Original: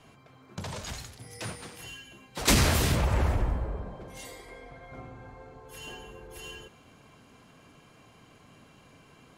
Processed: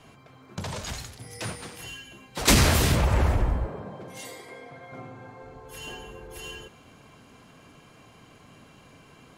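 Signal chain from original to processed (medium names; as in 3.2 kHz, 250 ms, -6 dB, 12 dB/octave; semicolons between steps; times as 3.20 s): 3.67–5.43 s: high-pass 110 Hz 24 dB/octave; trim +3.5 dB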